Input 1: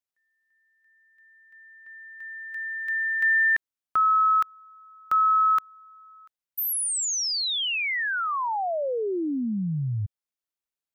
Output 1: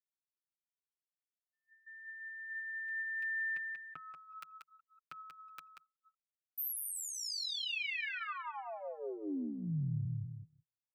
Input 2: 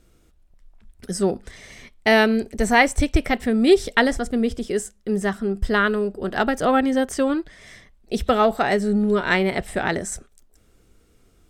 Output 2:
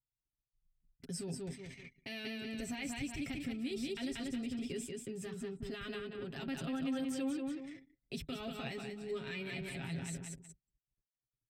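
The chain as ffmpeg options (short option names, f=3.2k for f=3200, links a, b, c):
-filter_complex "[0:a]acrossover=split=230|3100[a][b][c];[b]acompressor=threshold=-43dB:ratio=2:attack=0.2:release=739:knee=2.83:detection=peak[d];[a][d][c]amix=inputs=3:normalize=0,flanger=delay=0.6:depth=1.1:regen=79:speed=0.59:shape=triangular,aecho=1:1:185|370|555|740|925:0.562|0.208|0.077|0.0285|0.0105,agate=range=-33dB:threshold=-51dB:ratio=3:release=23:detection=rms,highpass=82,anlmdn=0.0158,equalizer=f=160:t=o:w=0.33:g=8,equalizer=f=315:t=o:w=0.33:g=4,equalizer=f=2.5k:t=o:w=0.33:g=11,equalizer=f=6.3k:t=o:w=0.33:g=-5,equalizer=f=10k:t=o:w=0.33:g=-6,asoftclip=type=tanh:threshold=-7.5dB,alimiter=level_in=2dB:limit=-24dB:level=0:latency=1:release=25,volume=-2dB,acompressor=threshold=-29dB:ratio=6:attack=6.8:release=149:knee=6:detection=rms,aecho=1:1:7.4:0.73,adynamicequalizer=threshold=0.00355:dfrequency=4600:dqfactor=0.7:tfrequency=4600:tqfactor=0.7:attack=5:release=100:ratio=0.375:range=2:mode=cutabove:tftype=highshelf,volume=-5.5dB"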